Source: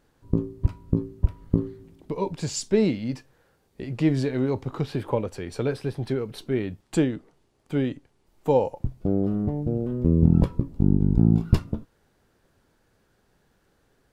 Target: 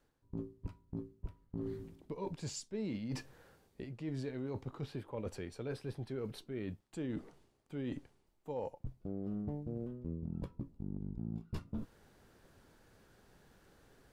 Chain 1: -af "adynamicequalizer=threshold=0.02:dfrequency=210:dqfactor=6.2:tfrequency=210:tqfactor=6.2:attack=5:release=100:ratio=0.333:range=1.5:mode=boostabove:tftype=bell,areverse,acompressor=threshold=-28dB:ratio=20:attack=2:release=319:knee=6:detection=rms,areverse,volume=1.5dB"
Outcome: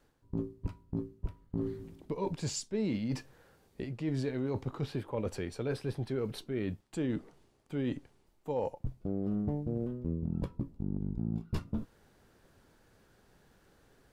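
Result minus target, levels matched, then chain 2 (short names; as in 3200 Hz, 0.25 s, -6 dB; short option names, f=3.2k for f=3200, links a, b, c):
compressor: peak gain reduction -6.5 dB
-af "adynamicequalizer=threshold=0.02:dfrequency=210:dqfactor=6.2:tfrequency=210:tqfactor=6.2:attack=5:release=100:ratio=0.333:range=1.5:mode=boostabove:tftype=bell,areverse,acompressor=threshold=-35dB:ratio=20:attack=2:release=319:knee=6:detection=rms,areverse,volume=1.5dB"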